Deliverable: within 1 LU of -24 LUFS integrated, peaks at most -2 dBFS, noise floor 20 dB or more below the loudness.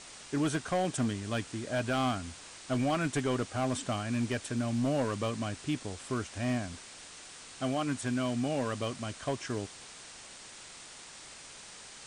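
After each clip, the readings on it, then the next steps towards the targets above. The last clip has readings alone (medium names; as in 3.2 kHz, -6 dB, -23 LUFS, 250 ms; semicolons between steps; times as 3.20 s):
clipped samples 0.9%; clipping level -24.0 dBFS; noise floor -50 dBFS; noise floor target -53 dBFS; loudness -33.0 LUFS; peak level -24.0 dBFS; loudness target -24.0 LUFS
-> clip repair -24 dBFS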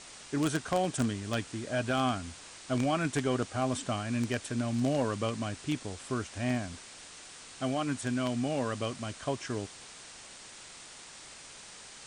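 clipped samples 0.0%; noise floor -50 dBFS; noise floor target -53 dBFS
-> noise reduction 6 dB, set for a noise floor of -50 dBFS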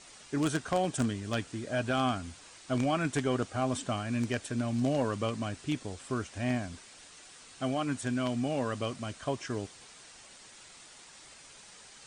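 noise floor -53 dBFS; loudness -32.5 LUFS; peak level -15.0 dBFS; loudness target -24.0 LUFS
-> trim +8.5 dB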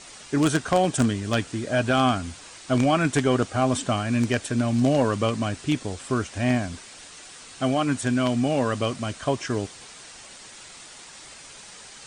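loudness -24.0 LUFS; peak level -6.5 dBFS; noise floor -45 dBFS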